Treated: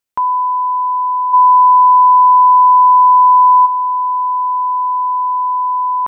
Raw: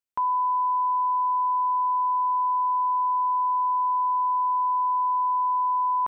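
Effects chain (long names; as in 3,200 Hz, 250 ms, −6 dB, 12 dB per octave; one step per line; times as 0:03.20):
speech leveller
0:01.33–0:03.65: hollow resonant body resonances 1,000 Hz, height 13 dB → 10 dB
boost into a limiter +11 dB
level −3 dB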